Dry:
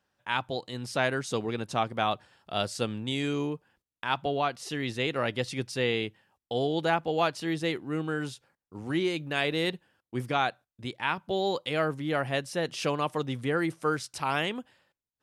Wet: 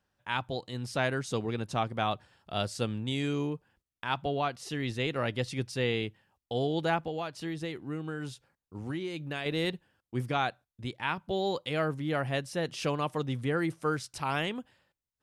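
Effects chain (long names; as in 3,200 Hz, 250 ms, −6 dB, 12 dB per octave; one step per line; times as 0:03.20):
low-shelf EQ 120 Hz +10.5 dB
0:07.03–0:09.46: downward compressor 6 to 1, threshold −29 dBFS, peak gain reduction 9 dB
level −3 dB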